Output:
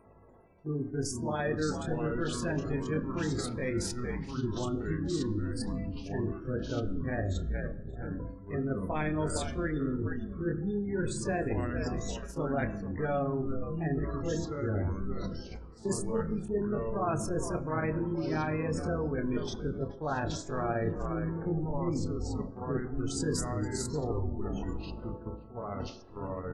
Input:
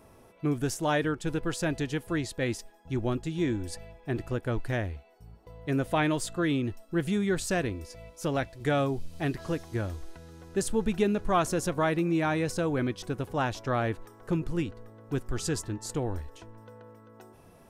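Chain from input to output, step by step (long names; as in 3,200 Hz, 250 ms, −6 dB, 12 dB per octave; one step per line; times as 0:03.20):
notch filter 2,800 Hz, Q 11
hum removal 163.6 Hz, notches 4
echo with shifted repeats 301 ms, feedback 43%, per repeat −69 Hz, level −12.5 dB
gate on every frequency bin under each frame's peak −20 dB strong
reversed playback
downward compressor 5 to 1, threshold −36 dBFS, peak gain reduction 14.5 dB
reversed playback
time stretch by overlap-add 1.5×, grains 117 ms
delay with pitch and tempo change per echo 294 ms, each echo −4 semitones, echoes 2, each echo −6 dB
noise gate −45 dBFS, range −8 dB
on a send at −10 dB: convolution reverb RT60 0.70 s, pre-delay 3 ms
on the sum: level +6 dB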